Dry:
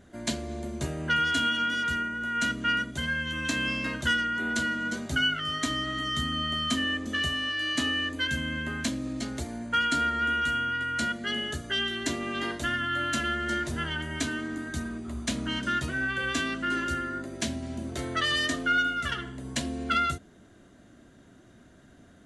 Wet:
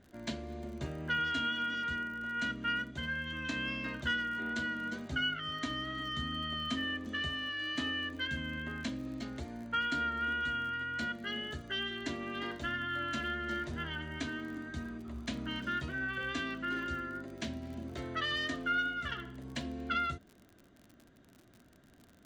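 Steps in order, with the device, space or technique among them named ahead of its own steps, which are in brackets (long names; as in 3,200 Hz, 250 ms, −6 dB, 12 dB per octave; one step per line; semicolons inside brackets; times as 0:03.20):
lo-fi chain (low-pass filter 4,200 Hz 12 dB per octave; tape wow and flutter 14 cents; surface crackle 46 per second −38 dBFS)
level −7 dB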